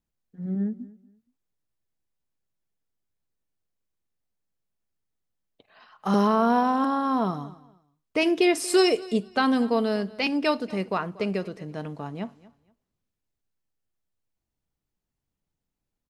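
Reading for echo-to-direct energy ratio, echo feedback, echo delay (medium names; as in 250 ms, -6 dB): -20.5 dB, 23%, 236 ms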